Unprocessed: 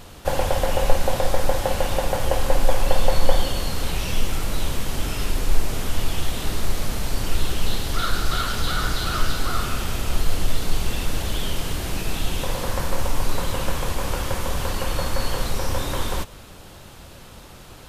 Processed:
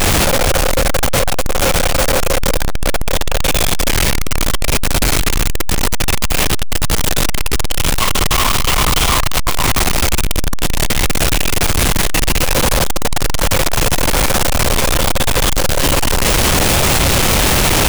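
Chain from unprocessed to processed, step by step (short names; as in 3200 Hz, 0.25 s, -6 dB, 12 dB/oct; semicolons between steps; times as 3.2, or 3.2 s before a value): infinite clipping; formant shift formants -4 st; gain +6 dB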